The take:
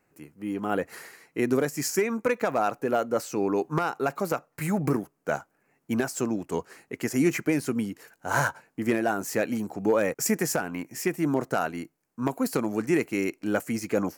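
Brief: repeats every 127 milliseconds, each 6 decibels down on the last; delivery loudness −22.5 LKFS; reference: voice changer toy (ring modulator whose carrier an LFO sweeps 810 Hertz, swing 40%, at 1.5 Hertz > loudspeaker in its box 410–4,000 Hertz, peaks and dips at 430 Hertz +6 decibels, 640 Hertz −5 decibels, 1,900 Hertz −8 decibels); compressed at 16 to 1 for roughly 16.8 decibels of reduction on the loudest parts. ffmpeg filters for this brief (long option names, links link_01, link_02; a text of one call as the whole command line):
ffmpeg -i in.wav -af "acompressor=threshold=-36dB:ratio=16,aecho=1:1:127|254|381|508|635|762:0.501|0.251|0.125|0.0626|0.0313|0.0157,aeval=exprs='val(0)*sin(2*PI*810*n/s+810*0.4/1.5*sin(2*PI*1.5*n/s))':channel_layout=same,highpass=410,equalizer=frequency=430:width_type=q:width=4:gain=6,equalizer=frequency=640:width_type=q:width=4:gain=-5,equalizer=frequency=1900:width_type=q:width=4:gain=-8,lowpass=frequency=4000:width=0.5412,lowpass=frequency=4000:width=1.3066,volume=22.5dB" out.wav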